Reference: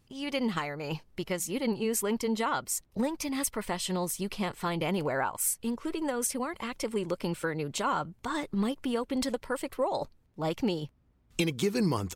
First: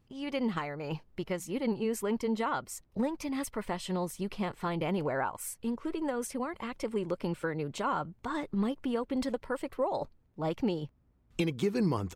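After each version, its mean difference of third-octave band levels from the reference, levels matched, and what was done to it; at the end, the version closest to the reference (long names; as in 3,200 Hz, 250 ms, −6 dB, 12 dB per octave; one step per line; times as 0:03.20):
3.0 dB: parametric band 13,000 Hz −10.5 dB 2.6 octaves
level −1 dB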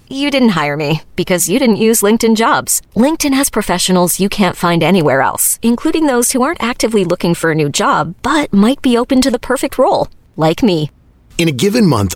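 1.0 dB: boost into a limiter +21.5 dB
level −1 dB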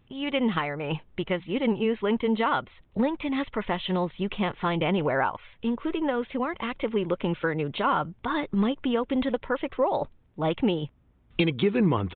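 6.5 dB: downsampling to 8,000 Hz
level +5 dB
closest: second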